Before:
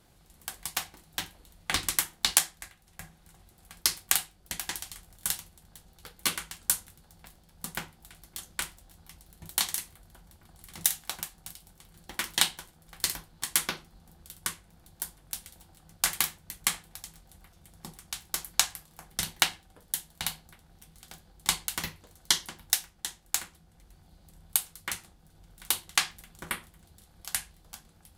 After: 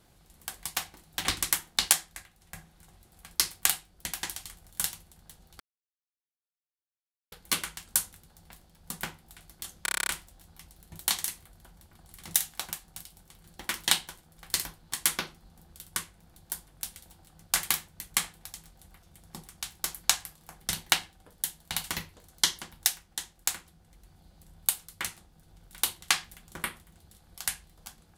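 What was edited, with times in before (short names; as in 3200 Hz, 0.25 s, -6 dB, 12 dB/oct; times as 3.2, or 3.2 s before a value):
1.25–1.71 cut
6.06 insert silence 1.72 s
8.57 stutter 0.03 s, 9 plays
20.34–21.71 cut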